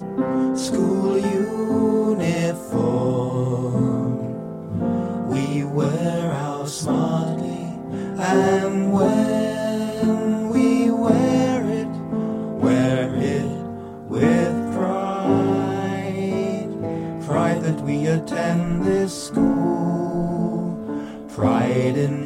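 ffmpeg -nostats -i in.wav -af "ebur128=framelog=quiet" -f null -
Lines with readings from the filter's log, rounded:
Integrated loudness:
  I:         -21.5 LUFS
  Threshold: -31.6 LUFS
Loudness range:
  LRA:         3.5 LU
  Threshold: -41.6 LUFS
  LRA low:   -23.2 LUFS
  LRA high:  -19.7 LUFS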